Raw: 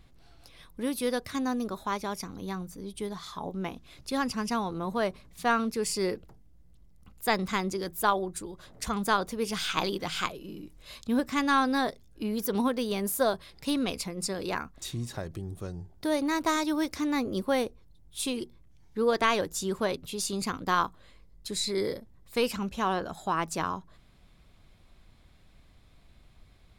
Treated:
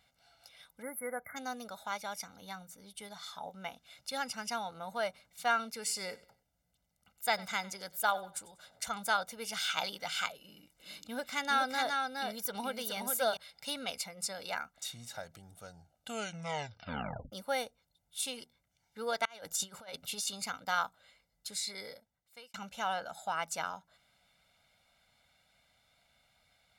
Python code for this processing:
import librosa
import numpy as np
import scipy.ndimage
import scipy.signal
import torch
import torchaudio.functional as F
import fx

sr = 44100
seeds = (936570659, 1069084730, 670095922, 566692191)

y = fx.spec_erase(x, sr, start_s=0.82, length_s=0.54, low_hz=2200.0, high_hz=10000.0)
y = fx.echo_feedback(y, sr, ms=95, feedback_pct=34, wet_db=-20.5, at=(5.67, 8.91))
y = fx.echo_single(y, sr, ms=417, db=-4.0, at=(10.38, 13.37))
y = fx.over_compress(y, sr, threshold_db=-34.0, ratio=-0.5, at=(19.25, 20.3))
y = fx.edit(y, sr, fx.tape_stop(start_s=15.73, length_s=1.59),
    fx.fade_out_span(start_s=21.47, length_s=1.07), tone=tone)
y = fx.highpass(y, sr, hz=910.0, slope=6)
y = y + 0.81 * np.pad(y, (int(1.4 * sr / 1000.0), 0))[:len(y)]
y = F.gain(torch.from_numpy(y), -4.0).numpy()